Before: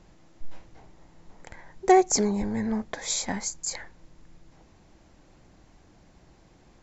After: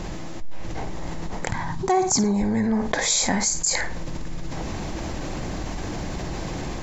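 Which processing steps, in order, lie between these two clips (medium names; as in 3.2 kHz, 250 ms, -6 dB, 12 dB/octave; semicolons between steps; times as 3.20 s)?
band-stop 1.4 kHz, Q 24; flutter echo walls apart 9.2 m, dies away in 0.24 s; level rider gain up to 7 dB; 1.49–2.24 s: graphic EQ 125/250/500/1000/2000/4000 Hz +11/+5/-12/+9/-5/+3 dB; level flattener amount 70%; trim -7.5 dB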